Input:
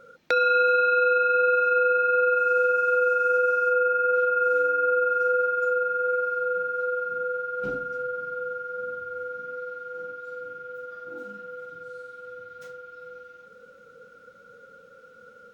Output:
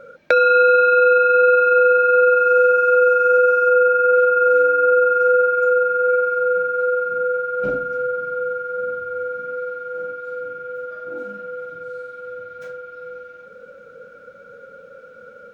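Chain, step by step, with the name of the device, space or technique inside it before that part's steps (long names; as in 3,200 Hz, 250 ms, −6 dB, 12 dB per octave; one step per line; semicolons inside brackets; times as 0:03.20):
inside a helmet (high-shelf EQ 3,300 Hz −8 dB; hollow resonant body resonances 590/1,600/2,300 Hz, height 12 dB)
level +6.5 dB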